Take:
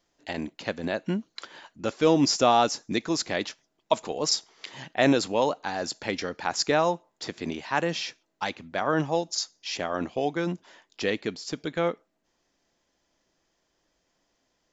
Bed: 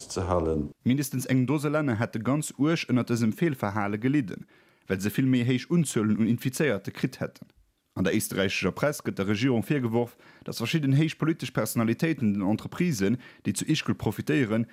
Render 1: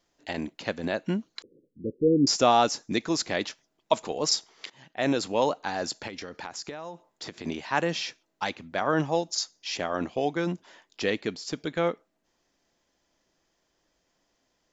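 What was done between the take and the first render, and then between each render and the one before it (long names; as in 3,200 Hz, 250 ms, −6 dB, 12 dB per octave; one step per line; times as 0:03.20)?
0:01.42–0:02.27: Butterworth low-pass 500 Hz 96 dB per octave
0:04.70–0:05.44: fade in, from −18 dB
0:06.07–0:07.45: downward compressor 16 to 1, threshold −33 dBFS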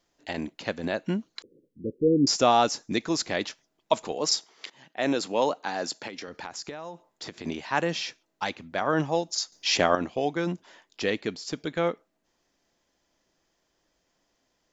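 0:04.15–0:06.28: high-pass filter 170 Hz
0:09.52–0:09.95: clip gain +8.5 dB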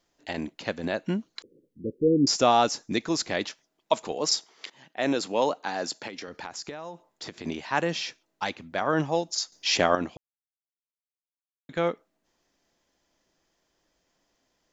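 0:03.49–0:04.06: low-shelf EQ 120 Hz −8.5 dB
0:10.17–0:11.69: silence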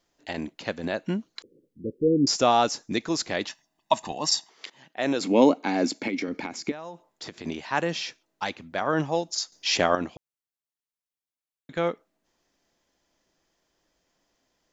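0:03.49–0:04.50: comb filter 1.1 ms, depth 71%
0:05.21–0:06.72: hollow resonant body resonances 260/2,200 Hz, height 17 dB, ringing for 25 ms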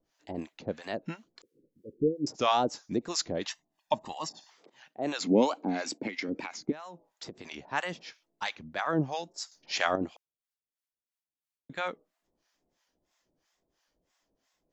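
tape wow and flutter 100 cents
two-band tremolo in antiphase 3 Hz, depth 100%, crossover 720 Hz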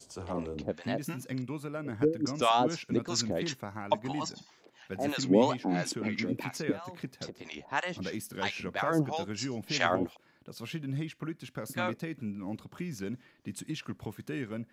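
mix in bed −12 dB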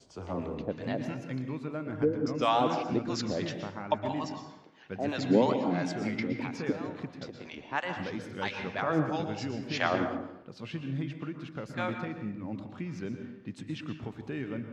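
high-frequency loss of the air 140 metres
dense smooth reverb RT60 0.86 s, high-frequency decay 0.6×, pre-delay 105 ms, DRR 6.5 dB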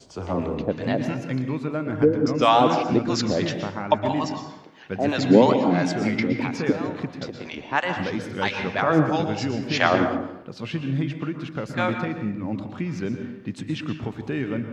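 level +9 dB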